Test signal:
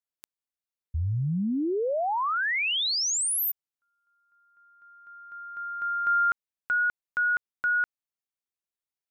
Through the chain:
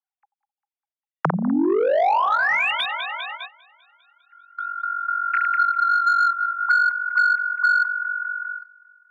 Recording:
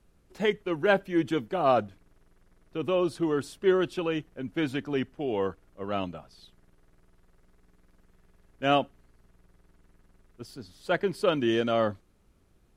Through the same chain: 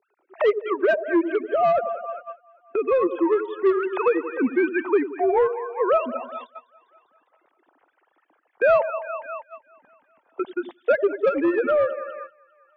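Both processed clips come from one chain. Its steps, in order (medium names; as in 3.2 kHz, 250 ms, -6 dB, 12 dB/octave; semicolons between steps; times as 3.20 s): formants replaced by sine waves; treble shelf 2.1 kHz -3 dB; reverb removal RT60 1.2 s; on a send: two-band feedback delay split 780 Hz, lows 86 ms, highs 200 ms, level -14 dB; on the sum: overdrive pedal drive 17 dB, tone 2.5 kHz, clips at -11 dBFS; peaking EQ 840 Hz +4.5 dB 1.2 oct; gain riding within 5 dB 0.5 s; gate -45 dBFS, range -19 dB; three bands compressed up and down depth 70%; trim +1.5 dB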